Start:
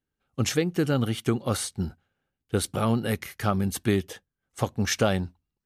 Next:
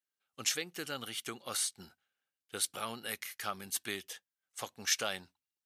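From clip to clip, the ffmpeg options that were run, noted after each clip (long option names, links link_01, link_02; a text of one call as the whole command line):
ffmpeg -i in.wav -af "highpass=frequency=610:poles=1,tiltshelf=frequency=1300:gain=-6.5,volume=-7.5dB" out.wav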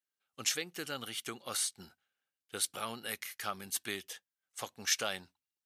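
ffmpeg -i in.wav -af anull out.wav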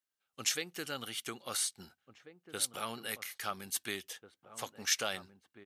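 ffmpeg -i in.wav -filter_complex "[0:a]asplit=2[link_01][link_02];[link_02]adelay=1691,volume=-12dB,highshelf=frequency=4000:gain=-38[link_03];[link_01][link_03]amix=inputs=2:normalize=0" out.wav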